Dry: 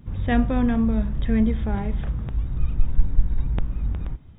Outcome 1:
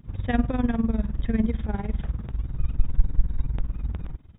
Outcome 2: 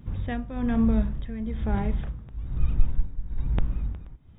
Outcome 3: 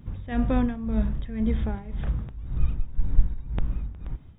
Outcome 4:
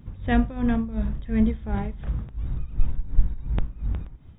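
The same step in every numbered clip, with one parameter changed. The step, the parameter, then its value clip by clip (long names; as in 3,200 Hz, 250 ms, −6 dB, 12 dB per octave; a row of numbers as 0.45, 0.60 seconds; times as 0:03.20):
amplitude tremolo, speed: 20, 1.1, 1.9, 2.8 Hertz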